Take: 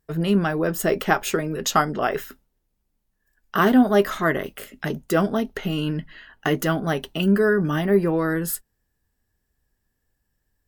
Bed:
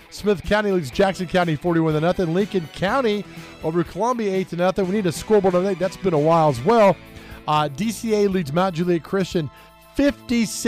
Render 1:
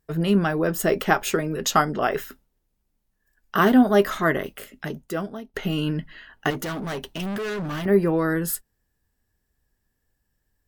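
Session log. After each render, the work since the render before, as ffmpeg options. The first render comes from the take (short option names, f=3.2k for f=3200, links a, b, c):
-filter_complex "[0:a]asettb=1/sr,asplit=3[a][b][c];[a]atrim=end=6.504[d];[b]atrim=start=6.5:end=7.86,asetpts=PTS-STARTPTS,afade=t=in:d=0.004:c=qsin,afade=t=out:st=1.356:d=0.004:c=qsin,volume=27dB,asoftclip=hard,volume=-27dB[e];[c]atrim=start=7.856[f];[d][e]acrossfade=d=0.004:c1=hsin:c2=qsin[g];[g][f]acrossfade=d=0.004:c1=qsin:c2=hsin,asplit=2[h][i];[h]atrim=end=5.54,asetpts=PTS-STARTPTS,afade=t=out:st=4.35:d=1.19:silence=0.11885[j];[i]atrim=start=5.54,asetpts=PTS-STARTPTS,afade=t=in:d=0.004:c=hsin:silence=0.11885[k];[j][k]concat=n=2:v=0:a=1"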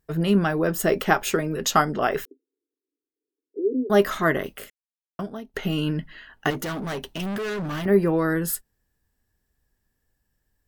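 -filter_complex "[0:a]asettb=1/sr,asplit=3[a][b][c];[a]atrim=end=2.254[d];[b]atrim=start=2.25:end=3.9,asetpts=PTS-STARTPTS,afade=t=in:d=0.004:c=qsin,afade=t=out:st=1.646:d=0.004:c=qsin,asuperpass=centerf=360:order=12:qfactor=1.7[e];[c]atrim=start=3.896[f];[d][e]acrossfade=d=0.004:c1=hsin:c2=qsin[g];[g][f]acrossfade=d=0.004:c1=qsin:c2=hsin,asplit=3[h][i][j];[h]atrim=end=4.7,asetpts=PTS-STARTPTS,afade=t=out:st=4.696:d=0.004:c=hsin[k];[i]atrim=start=4.7:end=5.19,asetpts=PTS-STARTPTS,volume=0[l];[j]atrim=start=5.19,asetpts=PTS-STARTPTS,afade=t=in:d=0.004:c=hsin[m];[k][l][m]concat=n=3:v=0:a=1"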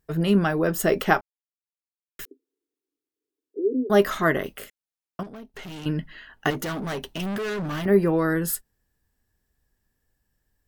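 -filter_complex "[0:a]asettb=1/sr,asplit=3[a][b][c];[a]atrim=end=5.234[d];[b]atrim=start=5.23:end=5.86,asetpts=PTS-STARTPTS,afade=t=in:d=0.004:c=qsin,afade=t=out:st=0.626:d=0.004:c=qsin,aeval=exprs='(tanh(63.1*val(0)+0.4)-tanh(0.4))/63.1':c=same[e];[c]atrim=start=5.856[f];[d][e]acrossfade=d=0.004:c1=hsin:c2=qsin[g];[g][f]acrossfade=d=0.004:c1=qsin:c2=hsin,asplit=3[h][i][j];[h]atrim=end=1.21,asetpts=PTS-STARTPTS,afade=t=out:st=1.206:d=0.004:c=hsin[k];[i]atrim=start=1.21:end=2.19,asetpts=PTS-STARTPTS,volume=0[l];[j]atrim=start=2.19,asetpts=PTS-STARTPTS,afade=t=in:d=0.004:c=hsin[m];[k][l][m]concat=n=3:v=0:a=1"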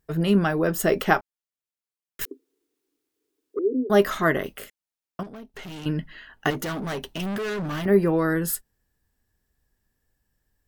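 -filter_complex "[0:a]asettb=1/sr,asplit=3[a][b][c];[a]atrim=end=2.214[d];[b]atrim=start=2.21:end=3.59,asetpts=PTS-STARTPTS,afade=t=in:d=0.004:c=qsin,afade=t=out:st=1.376:d=0.004:c=qsin,aeval=exprs='0.0841*sin(PI/2*2*val(0)/0.0841)':c=same[e];[c]atrim=start=3.586[f];[d][e]acrossfade=d=0.004:c1=hsin:c2=qsin[g];[g][f]acrossfade=d=0.004:c1=qsin:c2=hsin"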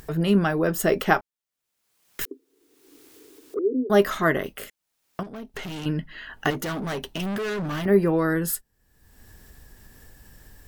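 -af "acompressor=mode=upward:threshold=-28dB:ratio=2.5"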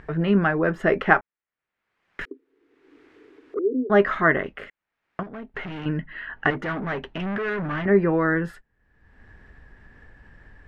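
-af "lowpass=f=1.9k:t=q:w=1.8"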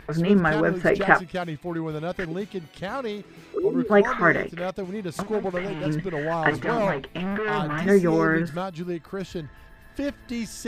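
-filter_complex "[1:a]volume=-10.5dB[a];[0:a][a]amix=inputs=2:normalize=0"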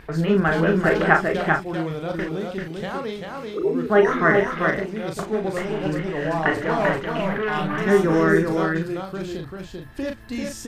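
-filter_complex "[0:a]asplit=2[a][b];[b]adelay=37,volume=-5.5dB[c];[a][c]amix=inputs=2:normalize=0,asplit=2[d][e];[e]aecho=0:1:391:0.631[f];[d][f]amix=inputs=2:normalize=0"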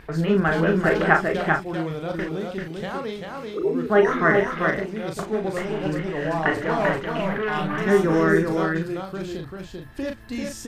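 -af "volume=-1dB"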